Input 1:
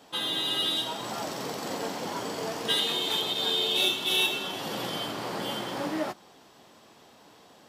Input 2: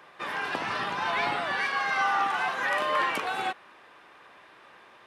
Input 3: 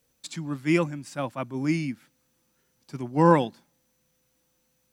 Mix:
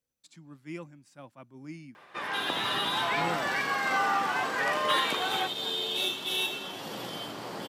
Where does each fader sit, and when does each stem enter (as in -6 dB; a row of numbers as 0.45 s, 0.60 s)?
-5.0 dB, -1.5 dB, -17.5 dB; 2.20 s, 1.95 s, 0.00 s